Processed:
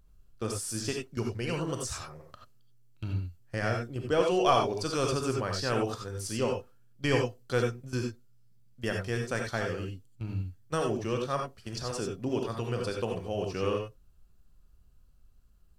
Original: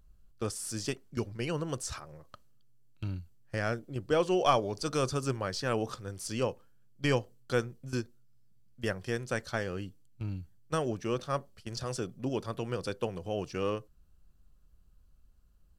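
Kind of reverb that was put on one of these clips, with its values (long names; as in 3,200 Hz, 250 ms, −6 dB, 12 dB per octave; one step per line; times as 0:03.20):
reverb whose tail is shaped and stops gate 110 ms rising, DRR 1.5 dB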